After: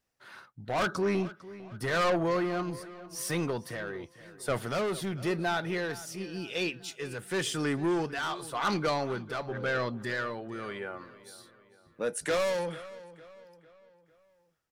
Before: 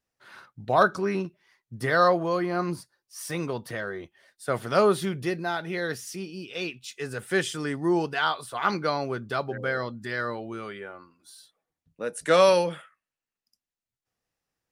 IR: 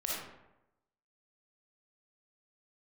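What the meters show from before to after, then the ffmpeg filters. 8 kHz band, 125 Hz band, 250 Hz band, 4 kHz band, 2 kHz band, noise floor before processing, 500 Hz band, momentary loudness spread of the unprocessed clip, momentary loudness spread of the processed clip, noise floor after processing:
-0.5 dB, -2.5 dB, -2.5 dB, -3.0 dB, -4.0 dB, under -85 dBFS, -6.0 dB, 15 LU, 18 LU, -66 dBFS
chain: -filter_complex "[0:a]asoftclip=type=tanh:threshold=0.0562,tremolo=f=0.91:d=0.49,asplit=2[s0][s1];[s1]adelay=451,lowpass=f=4600:p=1,volume=0.141,asplit=2[s2][s3];[s3]adelay=451,lowpass=f=4600:p=1,volume=0.46,asplit=2[s4][s5];[s5]adelay=451,lowpass=f=4600:p=1,volume=0.46,asplit=2[s6][s7];[s7]adelay=451,lowpass=f=4600:p=1,volume=0.46[s8];[s0][s2][s4][s6][s8]amix=inputs=5:normalize=0,volume=1.33"

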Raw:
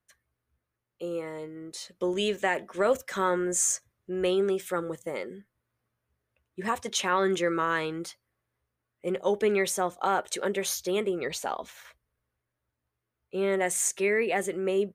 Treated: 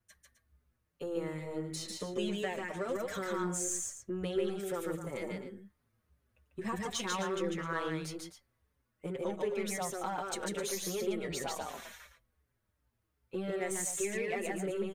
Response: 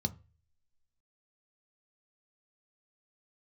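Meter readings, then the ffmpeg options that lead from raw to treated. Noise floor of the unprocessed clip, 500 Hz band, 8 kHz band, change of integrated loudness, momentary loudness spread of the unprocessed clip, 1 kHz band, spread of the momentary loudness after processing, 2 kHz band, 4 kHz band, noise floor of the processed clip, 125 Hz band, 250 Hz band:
-85 dBFS, -8.5 dB, -7.0 dB, -8.0 dB, 13 LU, -9.0 dB, 10 LU, -9.0 dB, -6.5 dB, -81 dBFS, -1.5 dB, -5.0 dB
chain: -filter_complex "[0:a]bass=f=250:g=7,treble=f=4000:g=1,acompressor=threshold=0.0158:ratio=3,aeval=exprs='0.0668*(cos(1*acos(clip(val(0)/0.0668,-1,1)))-cos(1*PI/2))+0.00168*(cos(8*acos(clip(val(0)/0.0668,-1,1)))-cos(8*PI/2))':c=same,aecho=1:1:145.8|259.5:0.794|0.282,asplit=2[s0][s1];[s1]adelay=5.6,afreqshift=-2.7[s2];[s0][s2]amix=inputs=2:normalize=1,volume=1.19"

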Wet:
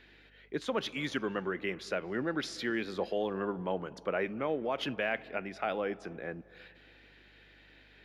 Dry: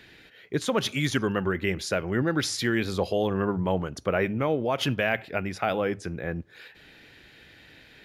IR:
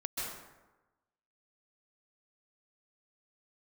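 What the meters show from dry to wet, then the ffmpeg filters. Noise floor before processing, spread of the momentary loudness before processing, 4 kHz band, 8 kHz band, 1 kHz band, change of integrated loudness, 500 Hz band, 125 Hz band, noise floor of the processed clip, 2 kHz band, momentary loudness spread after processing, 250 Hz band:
-54 dBFS, 7 LU, -8.5 dB, -15.0 dB, -6.5 dB, -7.5 dB, -6.5 dB, -15.0 dB, -60 dBFS, -7.0 dB, 8 LU, -8.5 dB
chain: -filter_complex "[0:a]acrossover=split=180 4800:gain=0.0891 1 0.251[s0][s1][s2];[s0][s1][s2]amix=inputs=3:normalize=0,aeval=exprs='val(0)+0.00126*(sin(2*PI*50*n/s)+sin(2*PI*2*50*n/s)/2+sin(2*PI*3*50*n/s)/3+sin(2*PI*4*50*n/s)/4+sin(2*PI*5*50*n/s)/5)':c=same,asplit=2[s3][s4];[1:a]atrim=start_sample=2205,asetrate=28224,aresample=44100,highshelf=f=4900:g=-12[s5];[s4][s5]afir=irnorm=-1:irlink=0,volume=0.0596[s6];[s3][s6]amix=inputs=2:normalize=0,volume=0.447"

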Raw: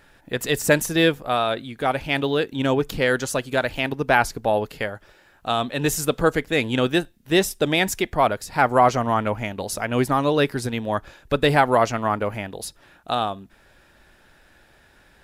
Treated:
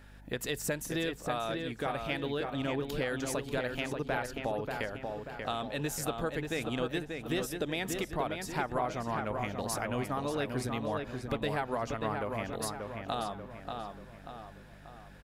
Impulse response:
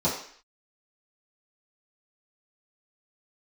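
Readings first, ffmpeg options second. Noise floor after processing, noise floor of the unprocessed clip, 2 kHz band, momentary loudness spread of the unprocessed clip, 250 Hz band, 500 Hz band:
-51 dBFS, -56 dBFS, -13.0 dB, 10 LU, -11.5 dB, -12.5 dB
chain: -filter_complex "[0:a]acompressor=threshold=0.0398:ratio=4,aeval=exprs='val(0)+0.00398*(sin(2*PI*50*n/s)+sin(2*PI*2*50*n/s)/2+sin(2*PI*3*50*n/s)/3+sin(2*PI*4*50*n/s)/4+sin(2*PI*5*50*n/s)/5)':c=same,asplit=2[s0][s1];[s1]adelay=586,lowpass=f=3200:p=1,volume=0.596,asplit=2[s2][s3];[s3]adelay=586,lowpass=f=3200:p=1,volume=0.49,asplit=2[s4][s5];[s5]adelay=586,lowpass=f=3200:p=1,volume=0.49,asplit=2[s6][s7];[s7]adelay=586,lowpass=f=3200:p=1,volume=0.49,asplit=2[s8][s9];[s9]adelay=586,lowpass=f=3200:p=1,volume=0.49,asplit=2[s10][s11];[s11]adelay=586,lowpass=f=3200:p=1,volume=0.49[s12];[s0][s2][s4][s6][s8][s10][s12]amix=inputs=7:normalize=0,volume=0.596"

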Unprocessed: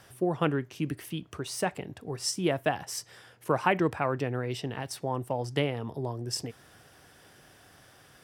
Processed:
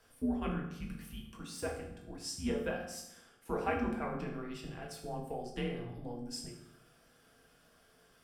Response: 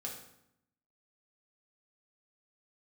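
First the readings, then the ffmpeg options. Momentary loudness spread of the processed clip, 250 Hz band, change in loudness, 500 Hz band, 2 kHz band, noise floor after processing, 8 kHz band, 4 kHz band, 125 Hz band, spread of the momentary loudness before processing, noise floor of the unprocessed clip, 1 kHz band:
12 LU, -5.0 dB, -8.0 dB, -8.5 dB, -9.0 dB, -66 dBFS, -9.5 dB, -10.0 dB, -10.0 dB, 10 LU, -57 dBFS, -9.5 dB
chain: -filter_complex "[0:a]afreqshift=-110[s0];[1:a]atrim=start_sample=2205,asetrate=41895,aresample=44100[s1];[s0][s1]afir=irnorm=-1:irlink=0,volume=0.398"

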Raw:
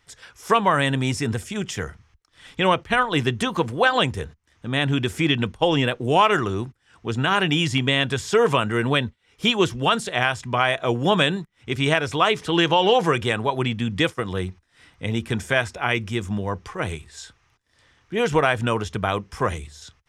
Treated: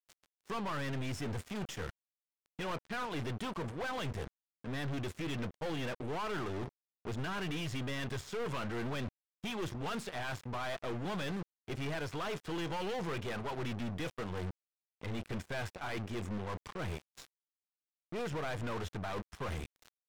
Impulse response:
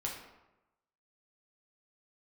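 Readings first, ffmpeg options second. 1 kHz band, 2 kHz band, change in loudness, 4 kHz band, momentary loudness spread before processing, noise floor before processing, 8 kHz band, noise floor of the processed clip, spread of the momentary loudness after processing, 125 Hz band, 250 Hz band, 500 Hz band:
-18.5 dB, -18.5 dB, -17.5 dB, -20.5 dB, 12 LU, -65 dBFS, -15.0 dB, under -85 dBFS, 7 LU, -14.0 dB, -15.0 dB, -17.5 dB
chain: -af "aeval=exprs='sgn(val(0))*max(abs(val(0))-0.0188,0)':c=same,areverse,acompressor=threshold=0.0224:ratio=5,areverse,aeval=exprs='(tanh(224*val(0)+0.35)-tanh(0.35))/224':c=same,aemphasis=mode=reproduction:type=cd,volume=3.76"

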